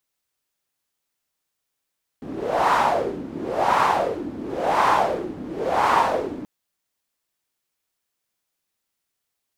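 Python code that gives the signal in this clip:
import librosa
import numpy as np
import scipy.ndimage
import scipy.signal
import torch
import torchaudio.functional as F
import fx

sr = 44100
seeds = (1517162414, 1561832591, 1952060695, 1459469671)

y = fx.wind(sr, seeds[0], length_s=4.23, low_hz=270.0, high_hz=1000.0, q=3.9, gusts=4, swing_db=15)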